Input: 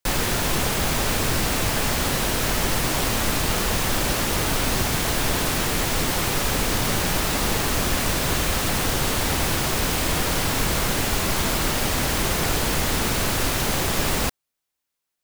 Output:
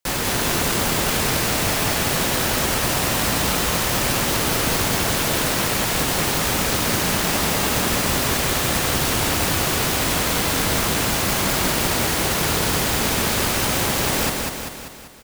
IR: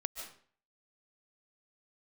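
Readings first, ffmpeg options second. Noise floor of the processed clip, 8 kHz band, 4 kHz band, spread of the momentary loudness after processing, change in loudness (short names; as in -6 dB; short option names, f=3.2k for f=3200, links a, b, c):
-29 dBFS, +3.5 dB, +3.0 dB, 0 LU, +3.0 dB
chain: -filter_complex "[0:a]asplit=2[a][b];[b]aecho=0:1:195|390|585|780|975|1170|1365|1560:0.708|0.389|0.214|0.118|0.0648|0.0356|0.0196|0.0108[c];[a][c]amix=inputs=2:normalize=0,acrusher=bits=2:mode=log:mix=0:aa=0.000001,highpass=f=80:p=1"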